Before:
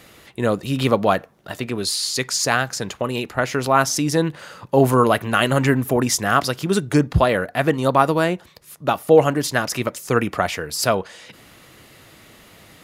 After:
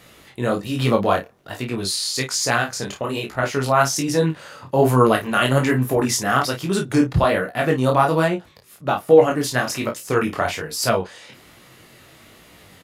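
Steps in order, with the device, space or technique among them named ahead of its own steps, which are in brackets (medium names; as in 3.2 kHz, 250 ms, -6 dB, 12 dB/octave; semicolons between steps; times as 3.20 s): double-tracked vocal (doubling 31 ms -7 dB; chorus 1.2 Hz, delay 16.5 ms, depth 7.6 ms); 8.28–9.31 s: treble shelf 4.3 kHz -5.5 dB; trim +1.5 dB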